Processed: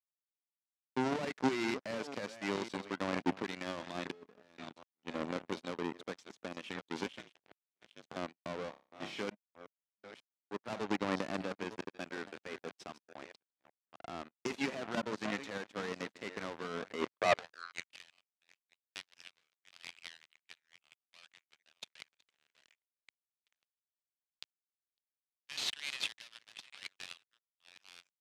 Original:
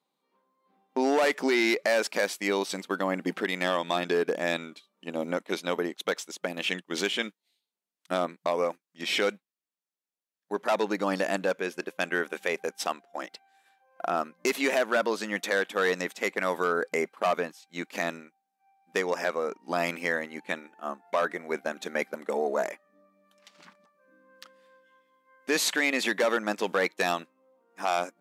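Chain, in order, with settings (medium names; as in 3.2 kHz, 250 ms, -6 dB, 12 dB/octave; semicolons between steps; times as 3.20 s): chunks repeated in reverse 537 ms, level -11.5 dB; in parallel at +2 dB: level held to a coarse grid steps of 23 dB; on the sum: hard clipper -26 dBFS, distortion -6 dB; 4.11–4.58 s: feedback comb 210 Hz, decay 0.23 s, harmonics all, mix 70%; 7.06–8.16 s: ring modulator 150 Hz; high-pass sweep 210 Hz -> 2.9 kHz, 16.96–17.90 s; power-law waveshaper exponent 3; band-pass 110–6100 Hz; 8.70–9.22 s: flutter echo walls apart 5.1 m, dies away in 0.31 s; trim +4 dB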